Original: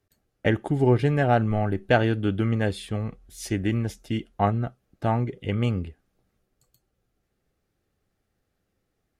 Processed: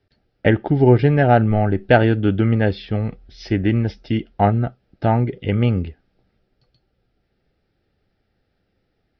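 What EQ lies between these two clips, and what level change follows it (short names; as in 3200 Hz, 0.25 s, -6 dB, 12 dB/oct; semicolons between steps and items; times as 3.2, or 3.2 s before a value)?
steep low-pass 5400 Hz 96 dB/oct; dynamic EQ 4100 Hz, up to -5 dB, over -47 dBFS, Q 0.95; notch 1100 Hz, Q 5.2; +7.0 dB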